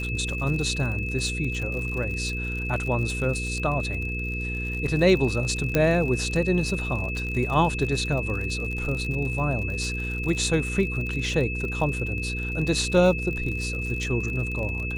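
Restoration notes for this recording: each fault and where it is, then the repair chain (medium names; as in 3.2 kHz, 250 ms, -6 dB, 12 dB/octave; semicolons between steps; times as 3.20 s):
crackle 58 per s -31 dBFS
hum 60 Hz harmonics 8 -31 dBFS
whine 2.6 kHz -31 dBFS
5.75 s: pop -8 dBFS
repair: de-click; de-hum 60 Hz, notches 8; band-stop 2.6 kHz, Q 30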